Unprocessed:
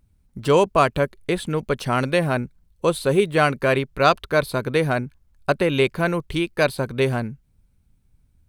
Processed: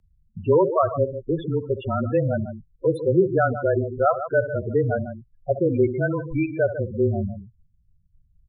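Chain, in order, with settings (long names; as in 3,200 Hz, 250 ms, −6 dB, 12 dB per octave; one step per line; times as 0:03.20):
loudspeakers that aren't time-aligned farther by 23 metres −12 dB, 51 metres −11 dB
spectral peaks only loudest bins 8
frequency shifter −23 Hz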